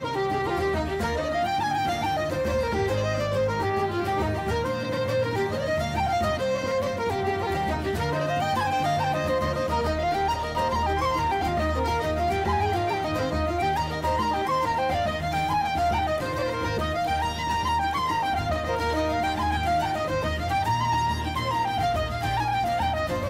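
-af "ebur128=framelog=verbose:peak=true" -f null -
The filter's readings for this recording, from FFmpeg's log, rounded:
Integrated loudness:
  I:         -25.7 LUFS
  Threshold: -35.7 LUFS
Loudness range:
  LRA:         0.9 LU
  Threshold: -45.7 LUFS
  LRA low:   -26.1 LUFS
  LRA high:  -25.2 LUFS
True peak:
  Peak:      -15.2 dBFS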